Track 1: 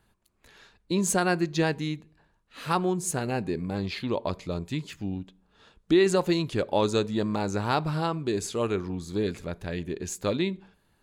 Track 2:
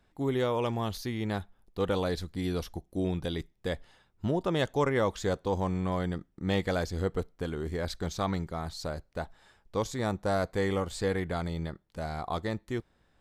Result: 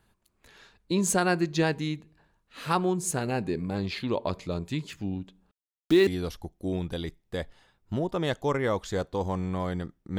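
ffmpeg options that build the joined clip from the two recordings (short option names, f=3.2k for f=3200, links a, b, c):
-filter_complex "[0:a]asettb=1/sr,asplit=3[a][b][c];[a]atrim=end=5.514[d];[b]atrim=start=5.51:end=6.07,asetpts=PTS-STARTPTS,afade=t=in:d=0.004:c=qsin,afade=t=out:st=0.556:d=0.004:c=qsin,aeval=exprs='val(0)*gte(abs(val(0)),0.0224)':c=same[e];[c]atrim=start=6.066[f];[d][e]acrossfade=d=0.004:c1=hsin:c2=qsin[g];[g][f]acrossfade=d=0.004:c1=qsin:c2=hsin,apad=whole_dur=10.18,atrim=end=10.18,atrim=end=6.072[h];[1:a]atrim=start=2.388:end=6.5[i];[h][i]acrossfade=d=0.004:c1=hsin:c2=hsin"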